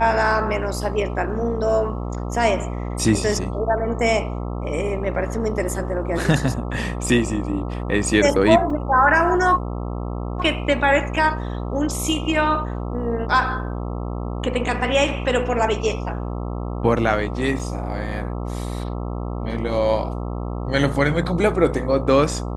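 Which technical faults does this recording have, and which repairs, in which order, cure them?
mains buzz 60 Hz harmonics 22 −27 dBFS
0:08.70: drop-out 3.3 ms
0:17.59–0:17.60: drop-out 5.4 ms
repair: hum removal 60 Hz, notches 22
repair the gap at 0:08.70, 3.3 ms
repair the gap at 0:17.59, 5.4 ms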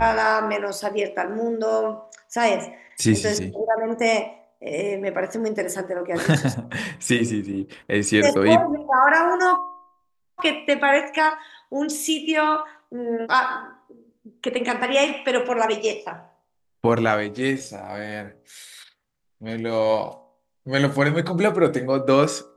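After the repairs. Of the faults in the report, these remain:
none of them is left

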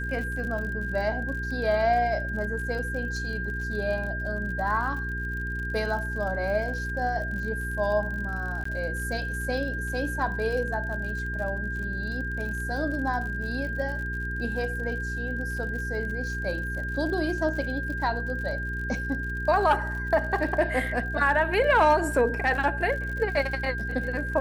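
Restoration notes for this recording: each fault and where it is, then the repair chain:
surface crackle 52 per second −35 dBFS
mains hum 60 Hz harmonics 7 −33 dBFS
whistle 1,600 Hz −32 dBFS
0:08.64–0:08.65: drop-out 14 ms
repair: click removal
hum removal 60 Hz, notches 7
notch filter 1,600 Hz, Q 30
repair the gap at 0:08.64, 14 ms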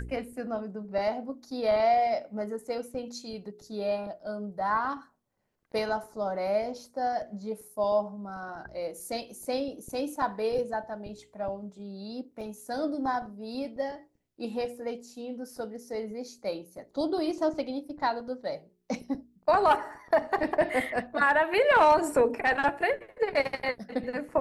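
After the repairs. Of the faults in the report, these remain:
none of them is left

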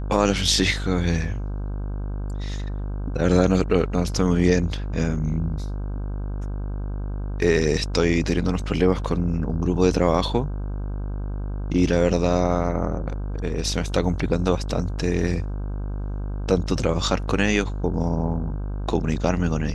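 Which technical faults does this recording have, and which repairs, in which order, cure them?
mains buzz 50 Hz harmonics 32 −28 dBFS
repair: hum removal 50 Hz, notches 32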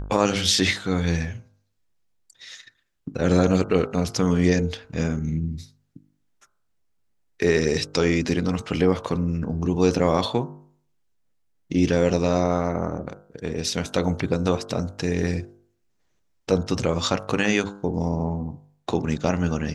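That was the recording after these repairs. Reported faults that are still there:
none of them is left

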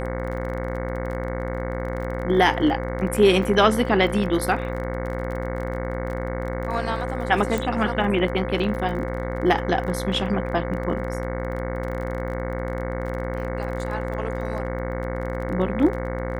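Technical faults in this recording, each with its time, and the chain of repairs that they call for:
mains buzz 60 Hz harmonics 37 −29 dBFS
surface crackle 26 per second −31 dBFS
whistle 520 Hz −31 dBFS
0:07.58: click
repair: click removal
notch filter 520 Hz, Q 30
hum removal 60 Hz, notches 37

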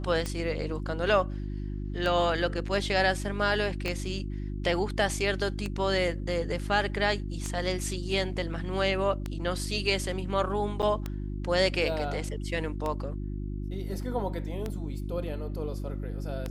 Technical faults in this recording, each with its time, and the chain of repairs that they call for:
mains hum 50 Hz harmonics 7 −34 dBFS
scratch tick 33 1/3 rpm −18 dBFS
0:03.88: click −18 dBFS
0:10.82–0:10.83: drop-out 7.7 ms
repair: click removal
hum removal 50 Hz, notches 7
repair the gap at 0:10.82, 7.7 ms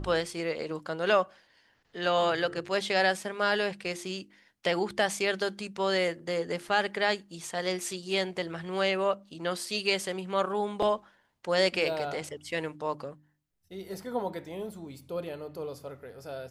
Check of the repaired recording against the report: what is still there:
0:03.88: click

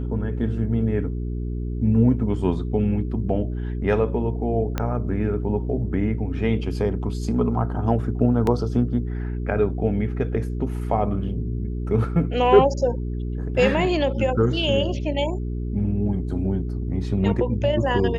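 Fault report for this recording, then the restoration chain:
mains hum 60 Hz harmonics 7 −27 dBFS
0:04.78: click −10 dBFS
0:08.47: drop-out 2.1 ms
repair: click removal
hum removal 60 Hz, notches 7
repair the gap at 0:08.47, 2.1 ms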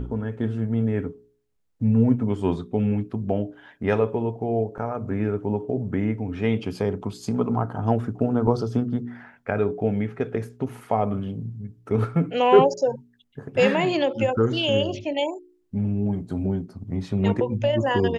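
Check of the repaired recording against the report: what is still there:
0:04.78: click

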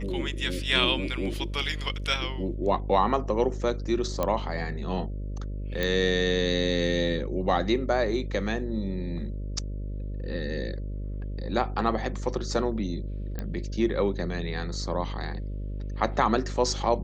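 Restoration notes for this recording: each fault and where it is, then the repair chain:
mains buzz 50 Hz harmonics 12 −33 dBFS
0:04.23: click −13 dBFS
0:05.83: click −14 dBFS
0:13.39: click −19 dBFS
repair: click removal
hum removal 50 Hz, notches 12

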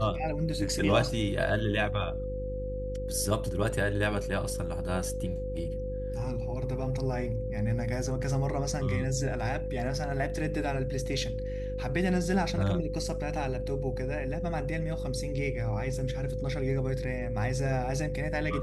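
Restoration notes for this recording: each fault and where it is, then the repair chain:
mains hum 50 Hz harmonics 8 −36 dBFS
whistle 510 Hz −35 dBFS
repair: hum removal 50 Hz, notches 8
notch filter 510 Hz, Q 30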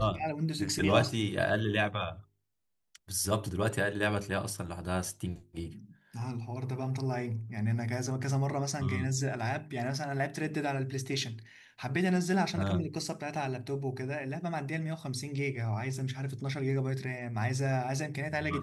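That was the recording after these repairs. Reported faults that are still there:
none of them is left

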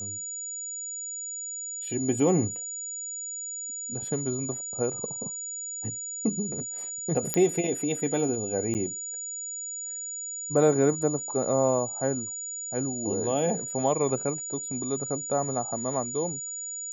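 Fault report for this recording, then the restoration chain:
whistle 6,900 Hz −33 dBFS
0:07.34: click −9 dBFS
0:08.74–0:08.75: drop-out 9.4 ms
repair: click removal
notch filter 6,900 Hz, Q 30
repair the gap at 0:08.74, 9.4 ms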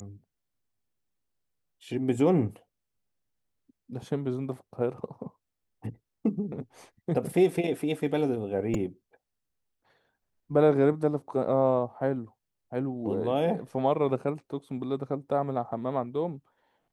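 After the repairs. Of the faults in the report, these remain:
none of them is left

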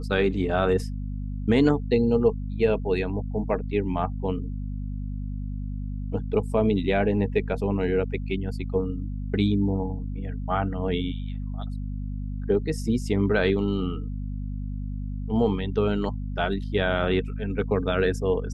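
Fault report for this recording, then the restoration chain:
mains hum 50 Hz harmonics 5 −31 dBFS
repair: hum removal 50 Hz, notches 5

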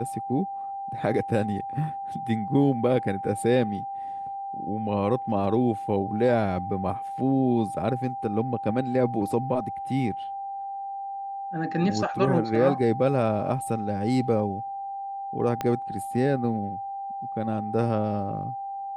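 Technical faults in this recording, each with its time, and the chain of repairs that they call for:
whistle 790 Hz −31 dBFS
0:15.61: click −14 dBFS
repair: click removal
notch filter 790 Hz, Q 30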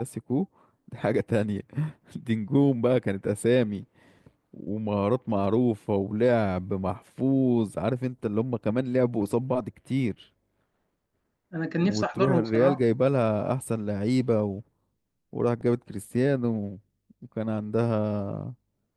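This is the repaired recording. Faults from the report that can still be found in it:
0:15.61: click

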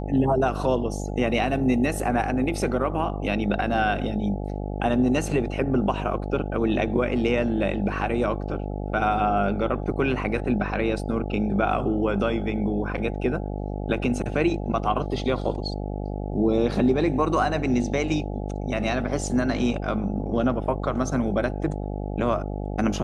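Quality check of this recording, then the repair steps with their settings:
mains buzz 50 Hz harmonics 17 −30 dBFS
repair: hum removal 50 Hz, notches 17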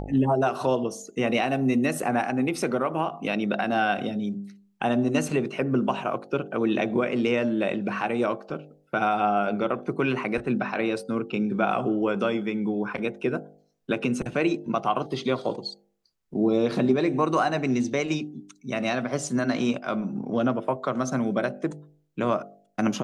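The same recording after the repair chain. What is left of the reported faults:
none of them is left

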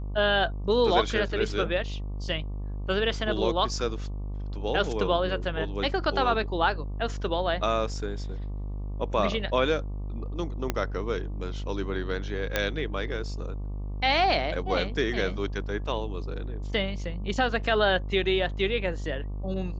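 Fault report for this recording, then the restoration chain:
mains buzz 50 Hz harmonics 24 −33 dBFS
0:10.70: click −11 dBFS
0:12.56: click −9 dBFS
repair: click removal
hum removal 50 Hz, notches 24

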